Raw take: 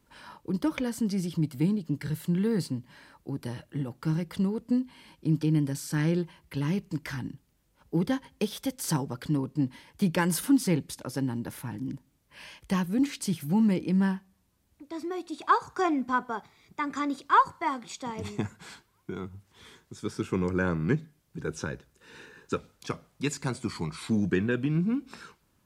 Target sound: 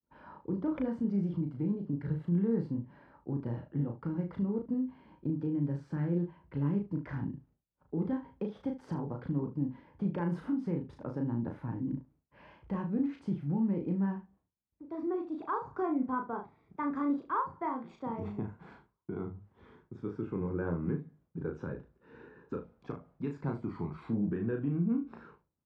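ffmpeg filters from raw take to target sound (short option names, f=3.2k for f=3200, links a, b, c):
-af "highpass=43,agate=range=-33dB:threshold=-56dB:ratio=3:detection=peak,lowpass=1k,alimiter=limit=-24dB:level=0:latency=1:release=165,aecho=1:1:35|74:0.631|0.211,volume=-1.5dB"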